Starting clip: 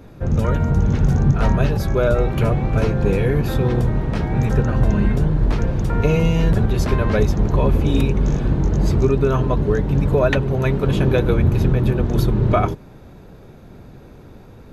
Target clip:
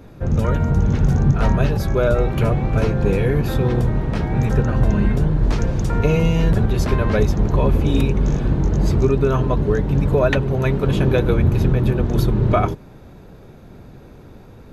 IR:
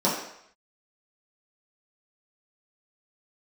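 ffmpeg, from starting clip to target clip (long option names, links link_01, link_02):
-filter_complex "[0:a]asettb=1/sr,asplit=3[link_01][link_02][link_03];[link_01]atrim=end=5.444[link_04];[link_02]atrim=start=5.44:end=5.99,asetpts=PTS-STARTPTS,afade=type=in:duration=0.004:curve=qsin,afade=type=out:start_time=0.546:duration=0.004:curve=qsin,equalizer=frequency=6600:width=1:gain=7[link_05];[link_03]atrim=start=5.986[link_06];[link_04][link_05]acrossfade=duration=0.004:curve1=hsin:curve2=qsin[link_07];[link_07][link_06]acrossfade=duration=0.004:curve1=qsin:curve2=hsin"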